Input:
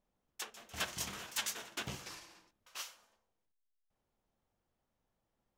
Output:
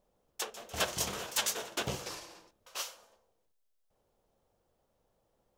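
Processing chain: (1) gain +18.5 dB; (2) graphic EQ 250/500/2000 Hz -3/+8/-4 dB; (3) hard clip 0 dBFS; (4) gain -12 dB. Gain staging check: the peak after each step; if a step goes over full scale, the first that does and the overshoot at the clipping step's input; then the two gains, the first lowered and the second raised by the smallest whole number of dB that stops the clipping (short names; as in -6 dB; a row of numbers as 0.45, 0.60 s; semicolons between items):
-4.0, -3.0, -3.0, -15.0 dBFS; no overload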